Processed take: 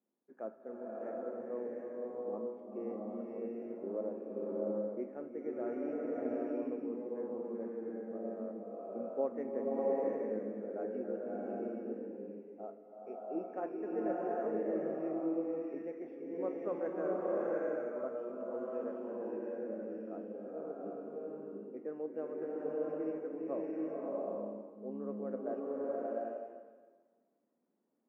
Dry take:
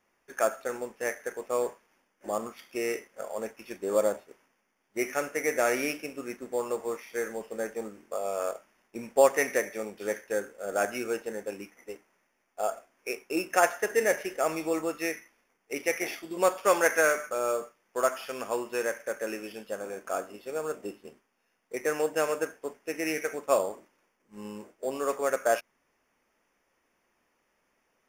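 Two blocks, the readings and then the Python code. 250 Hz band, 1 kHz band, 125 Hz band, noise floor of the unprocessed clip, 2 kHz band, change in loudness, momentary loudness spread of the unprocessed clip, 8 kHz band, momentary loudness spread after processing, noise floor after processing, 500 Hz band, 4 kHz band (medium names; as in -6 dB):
-1.5 dB, -13.5 dB, -4.0 dB, -75 dBFS, -24.5 dB, -9.0 dB, 14 LU, under -40 dB, 9 LU, -70 dBFS, -7.5 dB, under -35 dB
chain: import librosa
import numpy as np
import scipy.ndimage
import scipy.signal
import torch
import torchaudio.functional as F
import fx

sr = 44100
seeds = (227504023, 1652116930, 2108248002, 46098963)

y = fx.ladder_bandpass(x, sr, hz=280.0, resonance_pct=45)
y = fx.rev_bloom(y, sr, seeds[0], attack_ms=750, drr_db=-5.0)
y = F.gain(torch.from_numpy(y), 1.0).numpy()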